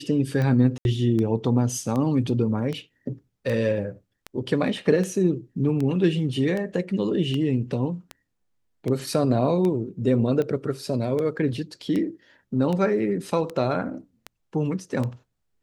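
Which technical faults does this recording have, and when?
tick 78 rpm -17 dBFS
0.78–0.85 gap 71 ms

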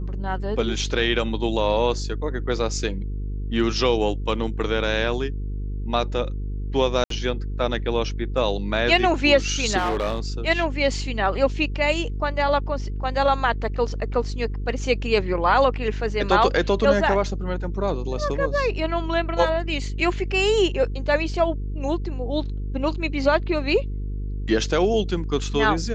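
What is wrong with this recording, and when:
buzz 50 Hz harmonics 9 -28 dBFS
7.04–7.1 gap 63 ms
9.77–10.2 clipped -19.5 dBFS

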